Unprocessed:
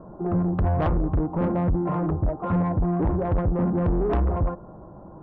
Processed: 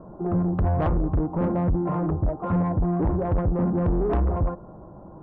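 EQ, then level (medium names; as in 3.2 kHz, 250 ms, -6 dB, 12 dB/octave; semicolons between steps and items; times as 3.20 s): treble shelf 2.7 kHz -7 dB; 0.0 dB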